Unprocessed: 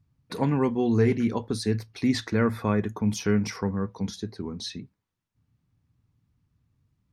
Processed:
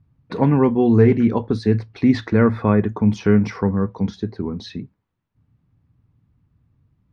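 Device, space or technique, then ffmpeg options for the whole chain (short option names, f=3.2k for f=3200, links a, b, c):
phone in a pocket: -af "lowpass=3.9k,highshelf=f=2.1k:g=-9,volume=8.5dB"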